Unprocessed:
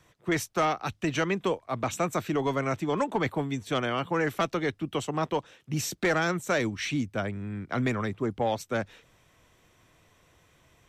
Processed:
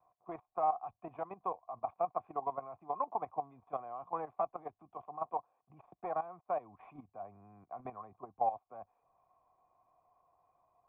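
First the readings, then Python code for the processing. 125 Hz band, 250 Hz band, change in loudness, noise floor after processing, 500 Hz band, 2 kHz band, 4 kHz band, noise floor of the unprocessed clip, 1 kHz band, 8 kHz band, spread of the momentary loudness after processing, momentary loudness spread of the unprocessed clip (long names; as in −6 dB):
−26.5 dB, −24.0 dB, −10.5 dB, −84 dBFS, −11.5 dB, −29.5 dB, below −40 dB, −63 dBFS, −4.5 dB, below −40 dB, 15 LU, 6 LU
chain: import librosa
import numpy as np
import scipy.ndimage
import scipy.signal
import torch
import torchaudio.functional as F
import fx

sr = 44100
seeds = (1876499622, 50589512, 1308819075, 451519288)

y = fx.dead_time(x, sr, dead_ms=0.083)
y = fx.level_steps(y, sr, step_db=13)
y = fx.formant_cascade(y, sr, vowel='a')
y = F.gain(torch.from_numpy(y), 7.0).numpy()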